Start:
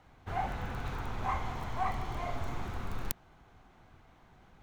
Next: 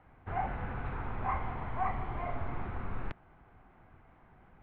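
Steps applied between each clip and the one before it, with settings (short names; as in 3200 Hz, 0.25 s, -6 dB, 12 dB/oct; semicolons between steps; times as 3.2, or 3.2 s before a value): LPF 2400 Hz 24 dB/oct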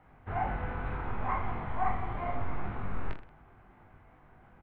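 reverse bouncing-ball echo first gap 20 ms, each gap 1.3×, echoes 5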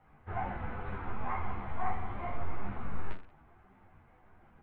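ensemble effect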